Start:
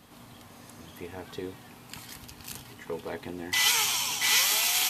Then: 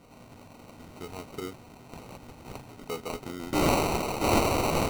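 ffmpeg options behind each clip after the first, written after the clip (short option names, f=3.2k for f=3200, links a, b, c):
-af "acrusher=samples=26:mix=1:aa=0.000001"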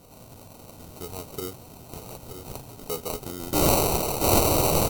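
-filter_complex "[0:a]equalizer=f=250:t=o:w=1:g=-6,equalizer=f=1k:t=o:w=1:g=-3,equalizer=f=2k:t=o:w=1:g=-10,equalizer=f=16k:t=o:w=1:g=11,asplit=2[a][b];[b]aecho=0:1:926:0.355[c];[a][c]amix=inputs=2:normalize=0,volume=5.5dB"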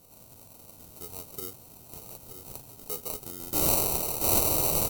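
-af "highshelf=f=6.1k:g=11.5,volume=-9dB"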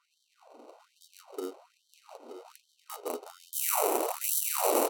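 -af "adynamicsmooth=sensitivity=6:basefreq=1.6k,afftfilt=real='re*gte(b*sr/1024,240*pow(3100/240,0.5+0.5*sin(2*PI*1.2*pts/sr)))':imag='im*gte(b*sr/1024,240*pow(3100/240,0.5+0.5*sin(2*PI*1.2*pts/sr)))':win_size=1024:overlap=0.75,volume=8dB"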